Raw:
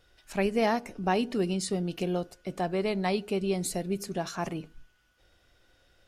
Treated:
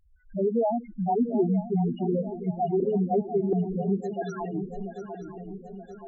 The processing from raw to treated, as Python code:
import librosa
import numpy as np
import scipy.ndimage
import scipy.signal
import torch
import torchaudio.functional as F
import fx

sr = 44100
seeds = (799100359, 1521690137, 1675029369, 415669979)

p1 = scipy.signal.medfilt(x, 9)
p2 = fx.weighting(p1, sr, curve='ITU-R 468', at=(4.03, 4.54))
p3 = (np.mod(10.0 ** (19.5 / 20.0) * p2 + 1.0, 2.0) - 1.0) / 10.0 ** (19.5 / 20.0)
p4 = p2 + (p3 * 10.0 ** (-8.5 / 20.0))
p5 = fx.spec_topn(p4, sr, count=2)
p6 = fx.dispersion(p5, sr, late='highs', ms=125.0, hz=800.0, at=(2.8, 3.53))
p7 = p6 + fx.echo_swing(p6, sr, ms=925, ratio=3, feedback_pct=52, wet_db=-11, dry=0)
y = p7 * 10.0 ** (5.0 / 20.0)